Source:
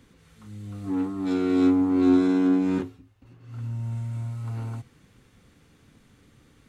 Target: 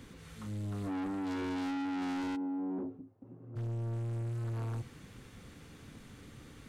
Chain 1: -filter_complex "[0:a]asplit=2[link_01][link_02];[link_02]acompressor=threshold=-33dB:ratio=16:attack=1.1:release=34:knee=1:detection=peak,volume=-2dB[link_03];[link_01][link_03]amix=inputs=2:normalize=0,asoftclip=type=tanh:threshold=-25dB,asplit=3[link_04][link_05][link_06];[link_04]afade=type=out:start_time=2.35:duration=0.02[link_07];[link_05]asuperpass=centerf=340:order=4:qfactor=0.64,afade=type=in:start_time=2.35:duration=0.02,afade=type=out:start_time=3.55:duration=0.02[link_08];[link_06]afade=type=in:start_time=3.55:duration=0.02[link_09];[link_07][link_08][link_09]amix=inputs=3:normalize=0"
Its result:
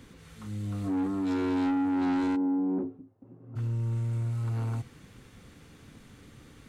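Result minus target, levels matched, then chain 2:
soft clipping: distortion −4 dB
-filter_complex "[0:a]asplit=2[link_01][link_02];[link_02]acompressor=threshold=-33dB:ratio=16:attack=1.1:release=34:knee=1:detection=peak,volume=-2dB[link_03];[link_01][link_03]amix=inputs=2:normalize=0,asoftclip=type=tanh:threshold=-34.5dB,asplit=3[link_04][link_05][link_06];[link_04]afade=type=out:start_time=2.35:duration=0.02[link_07];[link_05]asuperpass=centerf=340:order=4:qfactor=0.64,afade=type=in:start_time=2.35:duration=0.02,afade=type=out:start_time=3.55:duration=0.02[link_08];[link_06]afade=type=in:start_time=3.55:duration=0.02[link_09];[link_07][link_08][link_09]amix=inputs=3:normalize=0"

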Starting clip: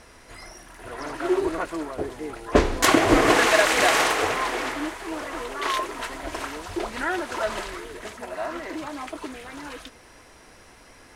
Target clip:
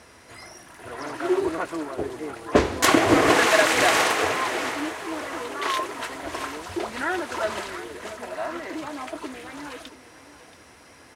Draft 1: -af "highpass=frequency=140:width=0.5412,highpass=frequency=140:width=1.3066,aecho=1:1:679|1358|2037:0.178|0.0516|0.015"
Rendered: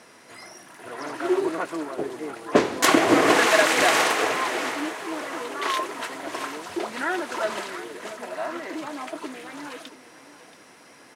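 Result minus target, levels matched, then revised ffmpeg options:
125 Hz band −6.0 dB
-af "highpass=frequency=67:width=0.5412,highpass=frequency=67:width=1.3066,aecho=1:1:679|1358|2037:0.178|0.0516|0.015"

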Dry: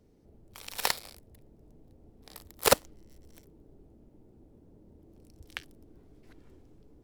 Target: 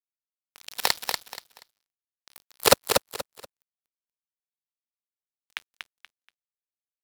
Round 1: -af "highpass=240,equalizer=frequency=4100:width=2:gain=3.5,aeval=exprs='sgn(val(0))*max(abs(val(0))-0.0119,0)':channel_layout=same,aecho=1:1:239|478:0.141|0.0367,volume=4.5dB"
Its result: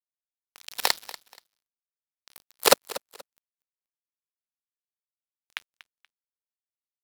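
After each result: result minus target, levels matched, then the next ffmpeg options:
125 Hz band −11.0 dB; echo-to-direct −12 dB
-af "highpass=67,equalizer=frequency=4100:width=2:gain=3.5,aeval=exprs='sgn(val(0))*max(abs(val(0))-0.0119,0)':channel_layout=same,aecho=1:1:239|478:0.141|0.0367,volume=4.5dB"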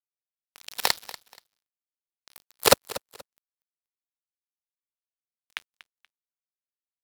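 echo-to-direct −12 dB
-af "highpass=67,equalizer=frequency=4100:width=2:gain=3.5,aeval=exprs='sgn(val(0))*max(abs(val(0))-0.0119,0)':channel_layout=same,aecho=1:1:239|478|717:0.562|0.146|0.038,volume=4.5dB"

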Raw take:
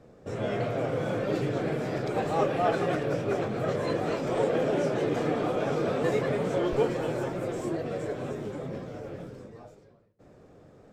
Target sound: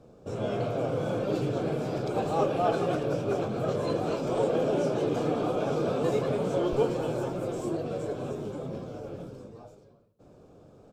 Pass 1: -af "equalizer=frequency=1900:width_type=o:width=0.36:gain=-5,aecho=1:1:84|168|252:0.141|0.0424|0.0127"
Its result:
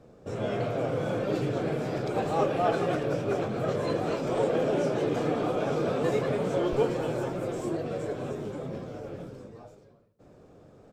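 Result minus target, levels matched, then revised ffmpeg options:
2,000 Hz band +3.5 dB
-af "equalizer=frequency=1900:width_type=o:width=0.36:gain=-15,aecho=1:1:84|168|252:0.141|0.0424|0.0127"

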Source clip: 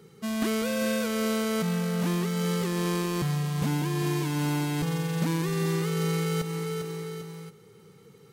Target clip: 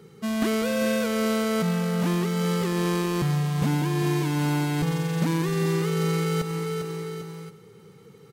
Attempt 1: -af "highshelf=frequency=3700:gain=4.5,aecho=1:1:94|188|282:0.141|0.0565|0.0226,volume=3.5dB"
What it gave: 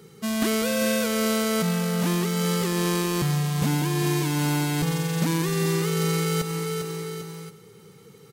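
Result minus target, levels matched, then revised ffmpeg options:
8,000 Hz band +6.0 dB
-af "highshelf=frequency=3700:gain=-4,aecho=1:1:94|188|282:0.141|0.0565|0.0226,volume=3.5dB"

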